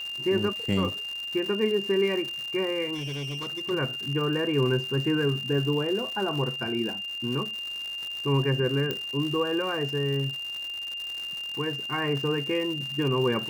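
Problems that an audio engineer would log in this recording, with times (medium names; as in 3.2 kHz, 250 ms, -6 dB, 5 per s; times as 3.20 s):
crackle 240 per s -33 dBFS
whine 2.8 kHz -32 dBFS
2.94–3.71 s: clipped -30 dBFS
8.91 s: pop -16 dBFS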